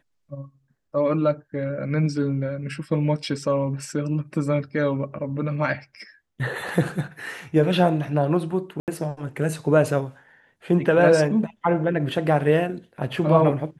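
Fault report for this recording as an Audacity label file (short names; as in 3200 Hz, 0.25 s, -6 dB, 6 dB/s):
8.800000	8.880000	gap 78 ms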